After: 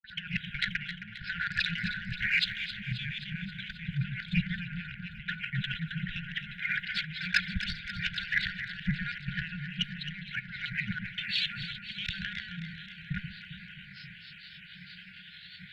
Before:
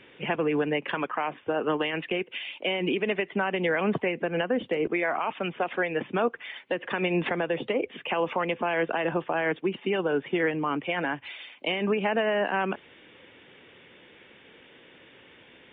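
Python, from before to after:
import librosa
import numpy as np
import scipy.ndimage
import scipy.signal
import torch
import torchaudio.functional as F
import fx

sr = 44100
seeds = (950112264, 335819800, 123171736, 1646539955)

y = fx.block_reorder(x, sr, ms=88.0, group=6)
y = fx.high_shelf(y, sr, hz=3300.0, db=2.5)
y = fx.over_compress(y, sr, threshold_db=-35.0, ratio=-1.0)
y = fx.graphic_eq_10(y, sr, hz=(125, 250, 500, 1000, 2000), db=(-10, 9, 3, 9, -9))
y = fx.cheby_harmonics(y, sr, harmonics=(4, 5), levels_db=(-17, -11), full_scale_db=-10.5)
y = fx.granulator(y, sr, seeds[0], grain_ms=178.0, per_s=11.0, spray_ms=22.0, spread_st=7)
y = fx.brickwall_bandstop(y, sr, low_hz=190.0, high_hz=1400.0)
y = fx.echo_alternate(y, sr, ms=133, hz=820.0, feedback_pct=83, wet_db=-7.5)
y = fx.band_widen(y, sr, depth_pct=40)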